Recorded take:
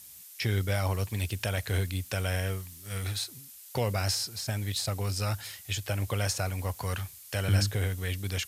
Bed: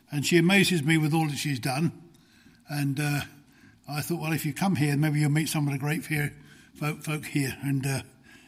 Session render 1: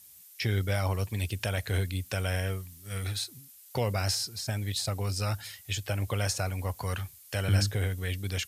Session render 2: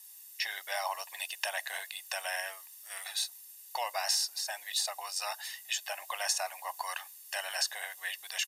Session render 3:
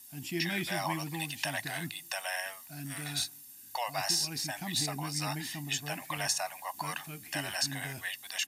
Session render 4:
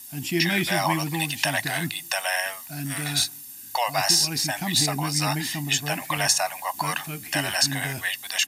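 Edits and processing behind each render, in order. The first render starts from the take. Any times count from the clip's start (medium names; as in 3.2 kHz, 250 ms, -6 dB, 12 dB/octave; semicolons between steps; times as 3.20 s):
noise reduction 6 dB, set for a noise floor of -49 dBFS
steep high-pass 620 Hz 36 dB/octave; comb 1.1 ms, depth 68%
add bed -14.5 dB
trim +10 dB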